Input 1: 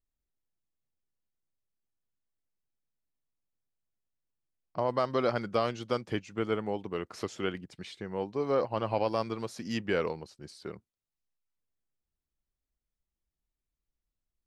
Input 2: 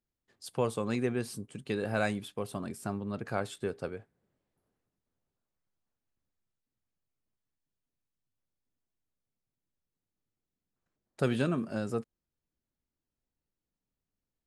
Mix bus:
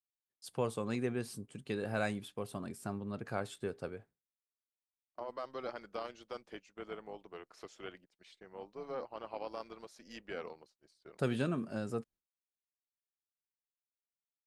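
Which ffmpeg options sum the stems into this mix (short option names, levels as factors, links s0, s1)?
-filter_complex "[0:a]highpass=330,tremolo=f=260:d=0.519,adelay=400,volume=0.316[s0];[1:a]volume=0.596[s1];[s0][s1]amix=inputs=2:normalize=0,agate=range=0.0224:threshold=0.00158:ratio=3:detection=peak"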